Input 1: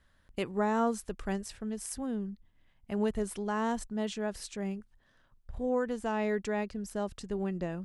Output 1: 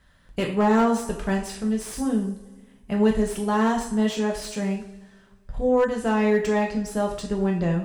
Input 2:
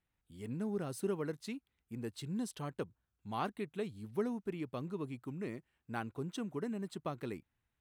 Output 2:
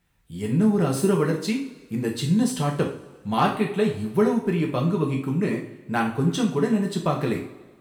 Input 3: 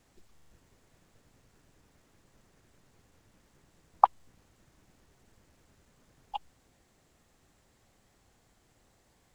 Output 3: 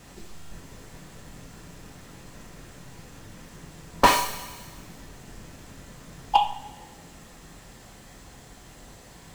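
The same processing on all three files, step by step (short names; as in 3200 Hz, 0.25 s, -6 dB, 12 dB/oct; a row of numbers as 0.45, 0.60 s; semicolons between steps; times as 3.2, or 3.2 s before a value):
wrapped overs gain 15.5 dB; two-slope reverb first 0.45 s, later 1.7 s, from -18 dB, DRR -0.5 dB; slew limiter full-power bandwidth 59 Hz; match loudness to -24 LUFS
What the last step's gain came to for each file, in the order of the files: +6.5, +13.5, +16.0 dB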